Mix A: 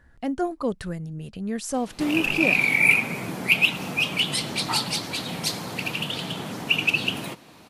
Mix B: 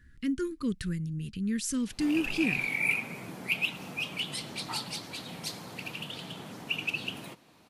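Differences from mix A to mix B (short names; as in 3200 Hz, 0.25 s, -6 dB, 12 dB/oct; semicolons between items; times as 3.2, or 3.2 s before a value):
speech: add Butterworth band-stop 720 Hz, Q 0.52; background -10.5 dB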